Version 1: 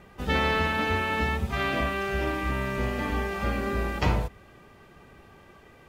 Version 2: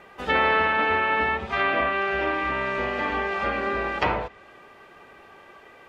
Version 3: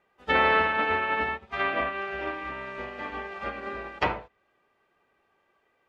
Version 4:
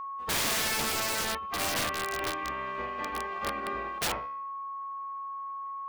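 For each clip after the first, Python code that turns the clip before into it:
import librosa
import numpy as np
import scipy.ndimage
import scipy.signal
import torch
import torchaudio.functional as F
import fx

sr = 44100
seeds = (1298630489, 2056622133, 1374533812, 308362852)

y1 = fx.low_shelf(x, sr, hz=320.0, db=-7.0)
y1 = fx.env_lowpass_down(y1, sr, base_hz=2800.0, full_db=-24.5)
y1 = fx.bass_treble(y1, sr, bass_db=-11, treble_db=-8)
y1 = F.gain(torch.from_numpy(y1), 7.0).numpy()
y2 = fx.upward_expand(y1, sr, threshold_db=-34.0, expansion=2.5)
y3 = fx.comb_fb(y2, sr, f0_hz=70.0, decay_s=0.73, harmonics='all', damping=0.0, mix_pct=50)
y3 = y3 + 10.0 ** (-39.0 / 20.0) * np.sin(2.0 * np.pi * 1100.0 * np.arange(len(y3)) / sr)
y3 = (np.mod(10.0 ** (27.5 / 20.0) * y3 + 1.0, 2.0) - 1.0) / 10.0 ** (27.5 / 20.0)
y3 = F.gain(torch.from_numpy(y3), 4.0).numpy()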